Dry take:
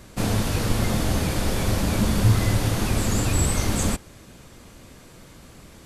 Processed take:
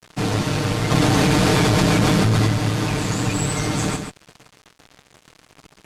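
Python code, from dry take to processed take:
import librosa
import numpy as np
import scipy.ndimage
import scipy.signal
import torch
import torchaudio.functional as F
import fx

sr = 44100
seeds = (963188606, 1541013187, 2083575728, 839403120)

p1 = scipy.signal.sosfilt(scipy.signal.butter(2, 85.0, 'highpass', fs=sr, output='sos'), x)
p2 = fx.notch(p1, sr, hz=560.0, q=12.0)
p3 = p2 + 0.85 * np.pad(p2, (int(6.6 * sr / 1000.0), 0))[:len(p2)]
p4 = fx.rider(p3, sr, range_db=10, speed_s=0.5)
p5 = p3 + (p4 * 10.0 ** (1.0 / 20.0))
p6 = np.sign(p5) * np.maximum(np.abs(p5) - 10.0 ** (-38.5 / 20.0), 0.0)
p7 = fx.quant_dither(p6, sr, seeds[0], bits=6, dither='none')
p8 = fx.clip_asym(p7, sr, top_db=-19.5, bottom_db=-7.5)
p9 = fx.air_absorb(p8, sr, metres=56.0)
p10 = p9 + fx.echo_single(p9, sr, ms=137, db=-7.0, dry=0)
p11 = fx.env_flatten(p10, sr, amount_pct=100, at=(0.9, 2.46), fade=0.02)
y = p11 * 10.0 ** (-3.0 / 20.0)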